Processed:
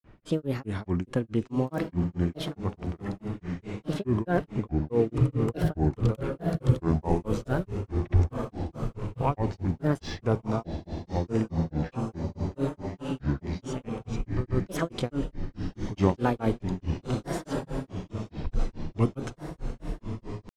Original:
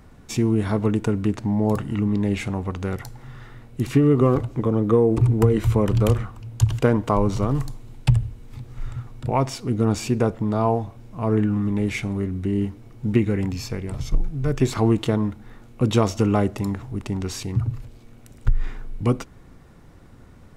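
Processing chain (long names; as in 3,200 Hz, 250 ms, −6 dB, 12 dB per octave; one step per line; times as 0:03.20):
low-pass that shuts in the quiet parts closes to 2,500 Hz, open at −14 dBFS
feedback delay with all-pass diffusion 1,258 ms, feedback 57%, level −6 dB
granular cloud 214 ms, grains 4.7 per second, pitch spread up and down by 7 semitones
level −4 dB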